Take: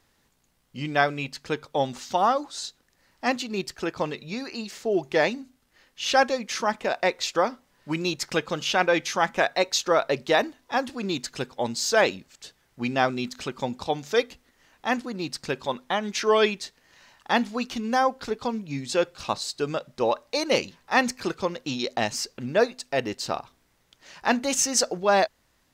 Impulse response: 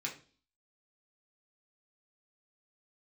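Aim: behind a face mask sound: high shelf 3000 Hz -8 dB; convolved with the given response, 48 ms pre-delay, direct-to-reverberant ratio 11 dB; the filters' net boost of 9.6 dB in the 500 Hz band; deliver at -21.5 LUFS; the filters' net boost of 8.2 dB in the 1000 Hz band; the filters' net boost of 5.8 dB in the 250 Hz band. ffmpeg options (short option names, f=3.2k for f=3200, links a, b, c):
-filter_complex "[0:a]equalizer=f=250:t=o:g=4,equalizer=f=500:t=o:g=8.5,equalizer=f=1k:t=o:g=8,asplit=2[a][b];[1:a]atrim=start_sample=2205,adelay=48[c];[b][c]afir=irnorm=-1:irlink=0,volume=-12.5dB[d];[a][d]amix=inputs=2:normalize=0,highshelf=f=3k:g=-8,volume=-3dB"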